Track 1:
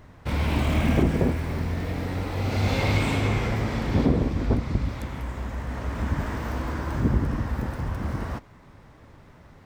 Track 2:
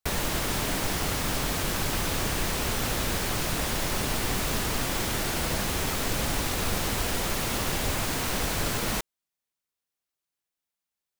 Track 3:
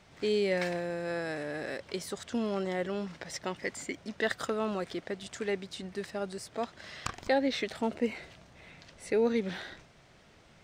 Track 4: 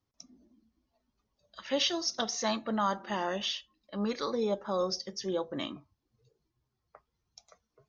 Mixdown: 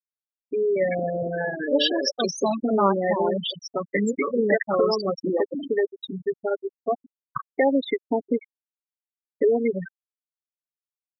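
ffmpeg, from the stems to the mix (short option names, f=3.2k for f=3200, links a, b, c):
-filter_complex "[0:a]equalizer=f=87:t=o:w=3:g=-11.5,volume=-18dB[a];[1:a]highpass=f=340:w=0.5412,highpass=f=340:w=1.3066,alimiter=level_in=2dB:limit=-24dB:level=0:latency=1:release=33,volume=-2dB,adelay=600,volume=-7dB,asplit=3[b][c][d];[b]atrim=end=6.21,asetpts=PTS-STARTPTS,afade=t=out:st=6.206:d=0.004:c=hsin[e];[c]atrim=start=6.21:end=7.16,asetpts=PTS-STARTPTS,volume=0[f];[d]atrim=start=7.16,asetpts=PTS-STARTPTS,afade=t=in:d=0.004:c=hsin[g];[e][f][g]concat=n=3:v=0:a=1[h];[2:a]highpass=130,aecho=1:1:7.1:0.56,acompressor=threshold=-34dB:ratio=2,adelay=300,volume=1dB[i];[3:a]highpass=82,volume=-3dB,asplit=2[j][k];[k]apad=whole_len=425894[l];[a][l]sidechaincompress=threshold=-50dB:ratio=8:attack=9.8:release=215[m];[m][h][i][j]amix=inputs=4:normalize=0,afftfilt=real='re*gte(hypot(re,im),0.0631)':imag='im*gte(hypot(re,im),0.0631)':win_size=1024:overlap=0.75,dynaudnorm=f=140:g=9:m=11dB"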